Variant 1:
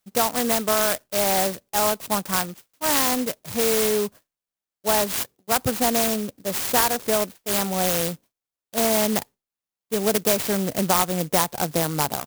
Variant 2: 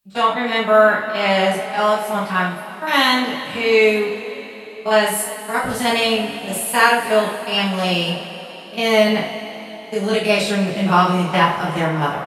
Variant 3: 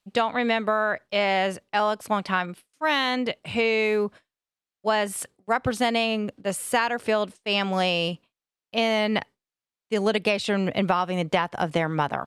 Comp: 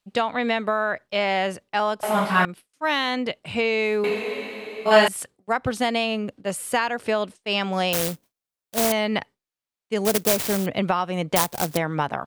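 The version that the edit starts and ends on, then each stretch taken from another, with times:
3
2.03–2.45 from 2
4.04–5.08 from 2
7.93–8.92 from 1
10.05–10.66 from 1
11.36–11.77 from 1

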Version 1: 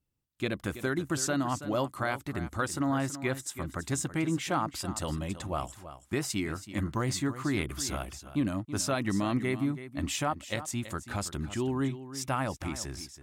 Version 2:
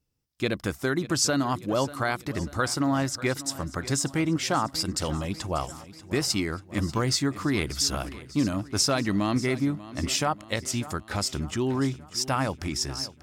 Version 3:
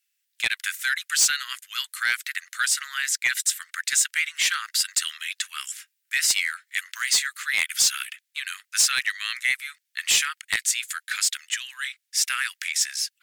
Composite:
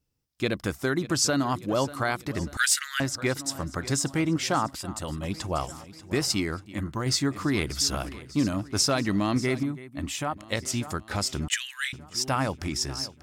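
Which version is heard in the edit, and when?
2
2.57–3 from 3
4.75–5.23 from 1
6.66–7.06 from 1
9.63–10.37 from 1
11.48–11.93 from 3

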